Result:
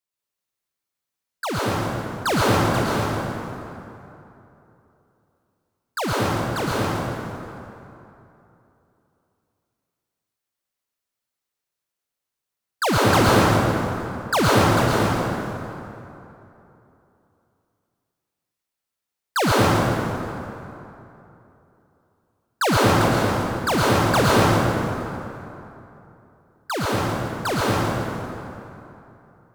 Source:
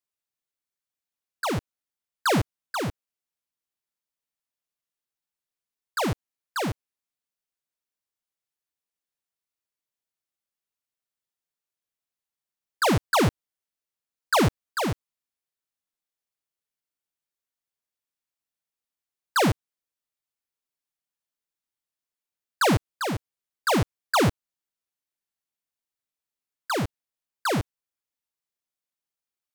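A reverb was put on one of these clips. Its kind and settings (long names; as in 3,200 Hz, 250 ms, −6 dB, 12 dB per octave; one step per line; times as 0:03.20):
dense smooth reverb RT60 3 s, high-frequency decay 0.6×, pre-delay 95 ms, DRR −6 dB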